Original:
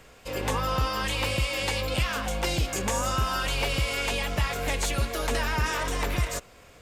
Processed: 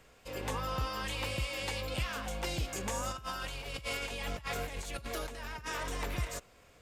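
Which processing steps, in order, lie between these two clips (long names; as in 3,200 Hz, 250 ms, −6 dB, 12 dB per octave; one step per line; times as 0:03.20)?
0:03.11–0:05.76: compressor whose output falls as the input rises −30 dBFS, ratio −0.5
level −8.5 dB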